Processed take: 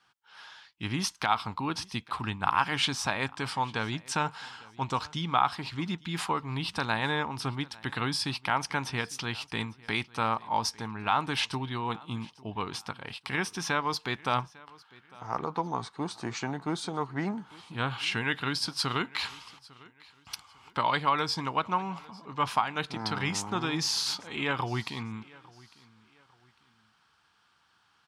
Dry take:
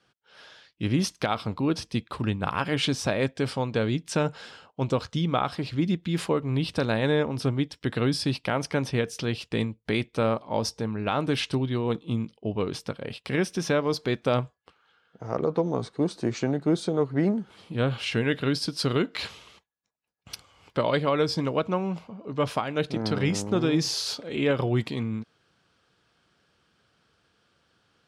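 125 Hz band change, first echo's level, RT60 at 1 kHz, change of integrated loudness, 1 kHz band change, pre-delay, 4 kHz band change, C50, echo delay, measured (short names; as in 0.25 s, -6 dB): -8.0 dB, -23.0 dB, none, -3.5 dB, +3.5 dB, none, +0.5 dB, none, 0.851 s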